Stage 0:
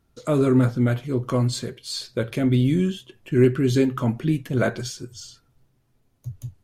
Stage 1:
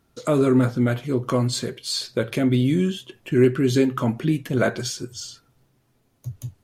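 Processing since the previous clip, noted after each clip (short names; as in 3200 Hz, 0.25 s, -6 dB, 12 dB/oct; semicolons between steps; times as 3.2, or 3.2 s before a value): low shelf 84 Hz -12 dB; in parallel at -1.5 dB: compressor, threshold -29 dBFS, peak gain reduction 15 dB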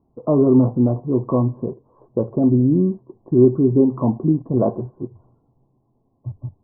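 in parallel at -10.5 dB: sample gate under -34.5 dBFS; on the sum: rippled Chebyshev low-pass 1100 Hz, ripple 3 dB; gain +2.5 dB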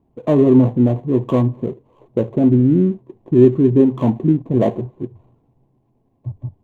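median filter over 25 samples; gain +2.5 dB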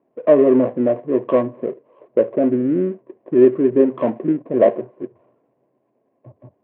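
speaker cabinet 410–2500 Hz, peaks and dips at 580 Hz +7 dB, 840 Hz -9 dB, 1700 Hz +3 dB; gain +3.5 dB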